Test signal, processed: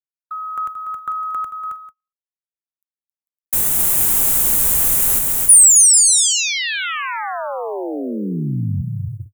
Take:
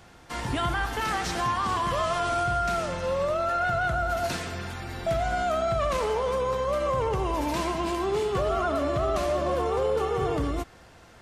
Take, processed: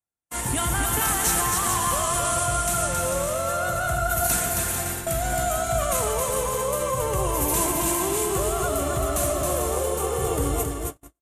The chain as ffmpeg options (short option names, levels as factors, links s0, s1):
-filter_complex "[0:a]acrossover=split=150|3000[s0][s1][s2];[s1]acompressor=threshold=0.0398:ratio=8[s3];[s0][s3][s2]amix=inputs=3:normalize=0,aecho=1:1:270|445.5|559.6|633.7|681.9:0.631|0.398|0.251|0.158|0.1,aexciter=amount=7.8:drive=7.3:freq=7100,agate=range=0.00355:threshold=0.0316:ratio=16:detection=peak,asplit=2[s4][s5];[s5]alimiter=limit=0.335:level=0:latency=1:release=120,volume=1[s6];[s4][s6]amix=inputs=2:normalize=0,volume=0.668"